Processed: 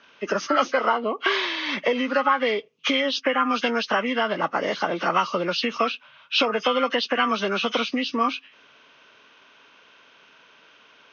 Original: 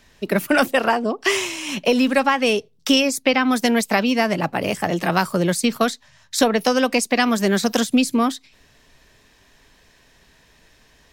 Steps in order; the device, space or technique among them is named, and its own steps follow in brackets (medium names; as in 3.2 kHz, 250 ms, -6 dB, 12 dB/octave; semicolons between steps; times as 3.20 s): hearing aid with frequency lowering (knee-point frequency compression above 1.1 kHz 1.5:1; compression 3:1, threshold -21 dBFS, peak gain reduction 8 dB; cabinet simulation 360–6100 Hz, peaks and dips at 370 Hz -3 dB, 740 Hz -5 dB, 1.2 kHz +7 dB, 1.9 kHz -5 dB, 2.8 kHz +5 dB, 4.3 kHz -4 dB); trim +3.5 dB